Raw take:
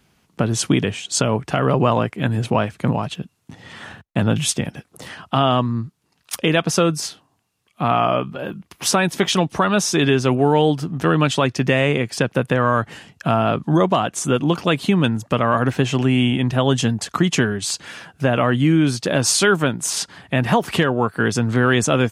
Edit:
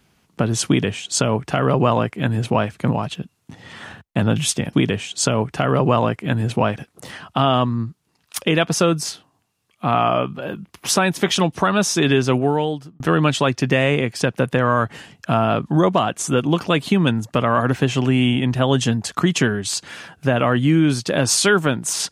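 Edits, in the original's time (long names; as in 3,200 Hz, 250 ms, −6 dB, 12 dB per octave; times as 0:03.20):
0:00.67–0:02.70: duplicate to 0:04.73
0:10.29–0:10.97: fade out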